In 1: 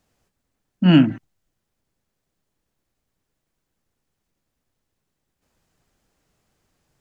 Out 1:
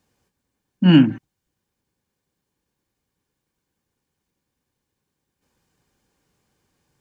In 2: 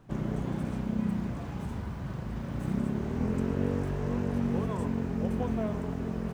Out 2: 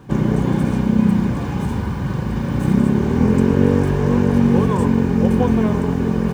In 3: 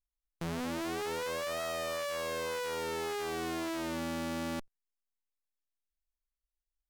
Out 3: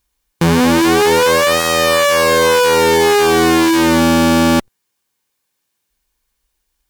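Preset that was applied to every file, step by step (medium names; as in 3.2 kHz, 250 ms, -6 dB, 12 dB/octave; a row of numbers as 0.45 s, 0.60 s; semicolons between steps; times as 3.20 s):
comb of notches 660 Hz; peak normalisation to -2 dBFS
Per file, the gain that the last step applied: +1.5 dB, +15.5 dB, +25.5 dB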